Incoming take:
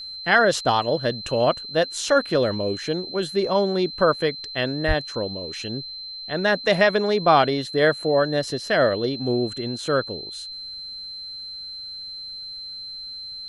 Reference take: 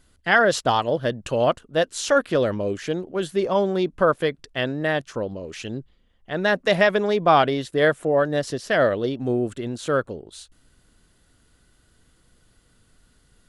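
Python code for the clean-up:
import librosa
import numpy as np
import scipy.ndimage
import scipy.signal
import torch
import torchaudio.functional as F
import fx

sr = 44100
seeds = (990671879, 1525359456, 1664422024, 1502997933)

y = fx.notch(x, sr, hz=4100.0, q=30.0)
y = fx.highpass(y, sr, hz=140.0, slope=24, at=(4.87, 4.99), fade=0.02)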